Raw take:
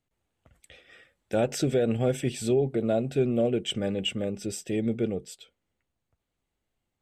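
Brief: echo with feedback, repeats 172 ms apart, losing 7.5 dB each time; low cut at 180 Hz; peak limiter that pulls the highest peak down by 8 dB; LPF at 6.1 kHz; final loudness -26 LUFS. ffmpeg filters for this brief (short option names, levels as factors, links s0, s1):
-af "highpass=180,lowpass=6100,alimiter=limit=0.0794:level=0:latency=1,aecho=1:1:172|344|516|688|860:0.422|0.177|0.0744|0.0312|0.0131,volume=1.88"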